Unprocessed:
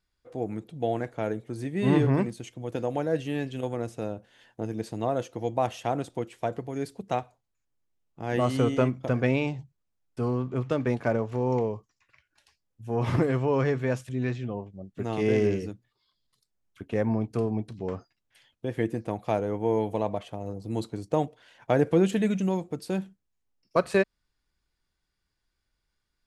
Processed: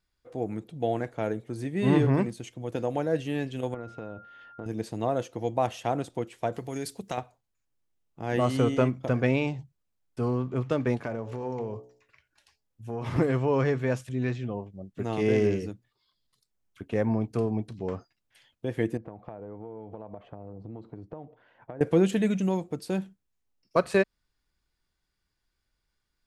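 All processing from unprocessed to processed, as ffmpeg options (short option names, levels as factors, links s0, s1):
-filter_complex "[0:a]asettb=1/sr,asplit=3[s0][s1][s2];[s0]atrim=end=3.744[s3];[s1]atrim=start=3.74:end=4.66,asetpts=PTS-STARTPTS,afade=t=in:d=0.004:c=qsin,afade=t=out:st=0.916:d=0.004:c=qsin,lowpass=3200,acompressor=threshold=0.0224:ratio=6:attack=3.2:release=140:knee=1:detection=peak,aeval=exprs='val(0)+0.00398*sin(2*PI*1400*n/s)':c=same[s4];[s2]atrim=start=4.656[s5];[s3][s4]acrossfade=d=0.004:c1=hsin:c2=qsin[s6];[s6][s5]acrossfade=d=0.004:c1=qsin:c2=hsin,asettb=1/sr,asplit=3[s7][s8][s9];[s7]atrim=end=6.544[s10];[s8]atrim=start=6.54:end=7.18,asetpts=PTS-STARTPTS,afade=t=in:d=0.004:c=qsin,afade=t=out:st=0.636:d=0.004:c=qsin,highshelf=f=2700:g=11,acompressor=threshold=0.0398:ratio=4:attack=3.2:release=140:knee=1:detection=peak[s11];[s9]atrim=start=7.176[s12];[s10][s11]acrossfade=d=0.004:c1=hsin:c2=qsin[s13];[s13][s12]acrossfade=d=0.004:c1=qsin:c2=hsin,asettb=1/sr,asplit=3[s14][s15][s16];[s14]atrim=end=10.984[s17];[s15]atrim=start=10.98:end=13.16,asetpts=PTS-STARTPTS,afade=t=in:d=0.004:c=qsin,afade=t=out:st=2.176:d=0.004:c=qsin,bandreject=f=61.91:t=h:w=4,bandreject=f=123.82:t=h:w=4,bandreject=f=185.73:t=h:w=4,bandreject=f=247.64:t=h:w=4,bandreject=f=309.55:t=h:w=4,bandreject=f=371.46:t=h:w=4,bandreject=f=433.37:t=h:w=4,bandreject=f=495.28:t=h:w=4,bandreject=f=557.19:t=h:w=4,bandreject=f=619.1:t=h:w=4,bandreject=f=681.01:t=h:w=4,bandreject=f=742.92:t=h:w=4,bandreject=f=804.83:t=h:w=4,bandreject=f=866.74:t=h:w=4,bandreject=f=928.65:t=h:w=4,acompressor=threshold=0.0355:ratio=4:attack=3.2:release=140:knee=1:detection=peak[s18];[s16]atrim=start=13.156[s19];[s17][s18]acrossfade=d=0.004:c1=hsin:c2=qsin[s20];[s20][s19]acrossfade=d=0.004:c1=qsin:c2=hsin,asettb=1/sr,asplit=3[s21][s22][s23];[s21]atrim=end=18.974[s24];[s22]atrim=start=18.97:end=21.81,asetpts=PTS-STARTPTS,afade=t=in:d=0.004:c=qsin,afade=t=out:st=2.836:d=0.004:c=qsin,acompressor=threshold=0.0158:ratio=10:attack=3.2:release=140:knee=1:detection=peak,lowpass=1400[s25];[s23]atrim=start=21.806[s26];[s24][s25]acrossfade=d=0.004:c1=hsin:c2=qsin[s27];[s27][s26]acrossfade=d=0.004:c1=qsin:c2=hsin"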